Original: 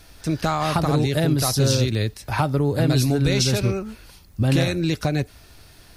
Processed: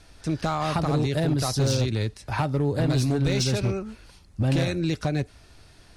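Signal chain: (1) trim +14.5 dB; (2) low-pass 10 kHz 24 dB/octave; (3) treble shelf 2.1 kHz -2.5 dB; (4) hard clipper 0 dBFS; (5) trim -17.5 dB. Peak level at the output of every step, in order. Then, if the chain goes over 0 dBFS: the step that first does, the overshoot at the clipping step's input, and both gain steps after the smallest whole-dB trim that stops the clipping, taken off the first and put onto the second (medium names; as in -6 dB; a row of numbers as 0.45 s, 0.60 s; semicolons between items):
+5.0 dBFS, +5.5 dBFS, +5.0 dBFS, 0.0 dBFS, -17.5 dBFS; step 1, 5.0 dB; step 1 +9.5 dB, step 5 -12.5 dB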